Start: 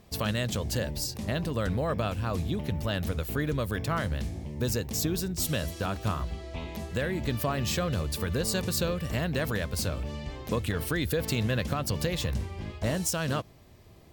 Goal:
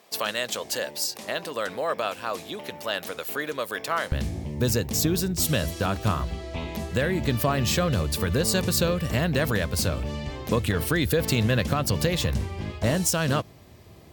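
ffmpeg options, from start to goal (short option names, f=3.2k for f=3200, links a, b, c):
-af "asetnsamples=n=441:p=0,asendcmd='4.12 highpass f 60',highpass=510,volume=5.5dB"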